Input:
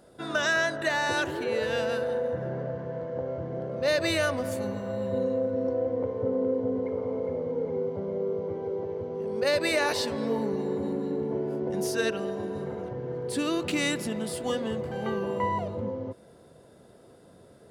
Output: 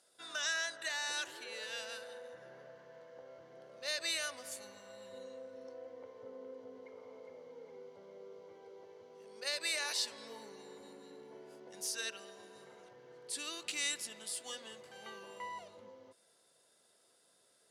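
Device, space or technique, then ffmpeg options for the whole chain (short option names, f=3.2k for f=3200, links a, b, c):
piezo pickup straight into a mixer: -af "lowpass=8.2k,aderivative,volume=1.5dB"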